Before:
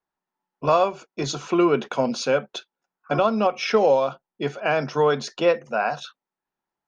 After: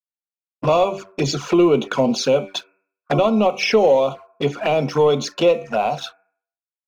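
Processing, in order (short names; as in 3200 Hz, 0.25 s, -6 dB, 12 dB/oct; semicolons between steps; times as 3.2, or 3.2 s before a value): expander -42 dBFS; de-hum 97.3 Hz, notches 27; sample leveller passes 1; in parallel at +1.5 dB: compressor 8:1, threshold -24 dBFS, peak gain reduction 12 dB; on the sum: envelope flanger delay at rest 9.9 ms, full sweep at -14.5 dBFS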